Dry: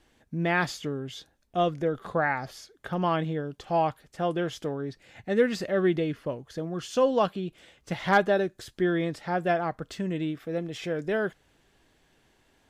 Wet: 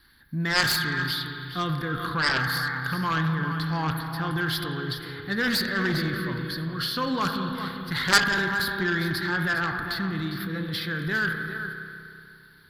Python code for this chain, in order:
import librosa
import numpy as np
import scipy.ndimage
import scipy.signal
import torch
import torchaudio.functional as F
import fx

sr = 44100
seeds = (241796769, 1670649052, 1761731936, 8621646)

p1 = fx.transient(x, sr, attack_db=1, sustain_db=8)
p2 = fx.curve_eq(p1, sr, hz=(150.0, 350.0, 650.0, 1000.0, 1600.0, 2700.0, 4400.0, 7000.0, 11000.0), db=(0, -8, -20, -1, 9, -8, 13, -26, 12))
p3 = p2 + fx.echo_single(p2, sr, ms=404, db=-11.0, dry=0)
p4 = fx.rev_spring(p3, sr, rt60_s=2.5, pass_ms=(31, 60), chirp_ms=30, drr_db=5.0)
p5 = fx.cheby_harmonics(p4, sr, harmonics=(7,), levels_db=(-8,), full_scale_db=-4.5)
y = p5 * librosa.db_to_amplitude(-2.0)